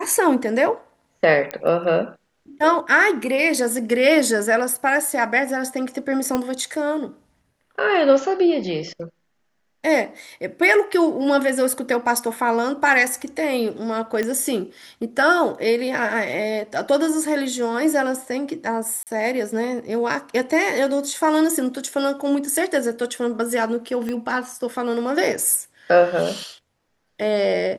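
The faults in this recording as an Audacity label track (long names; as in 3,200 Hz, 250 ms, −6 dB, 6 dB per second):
1.510000	1.510000	click −11 dBFS
6.350000	6.350000	click −8 dBFS
14.230000	14.230000	click −12 dBFS
19.030000	19.070000	drop-out 38 ms
24.090000	24.090000	click −16 dBFS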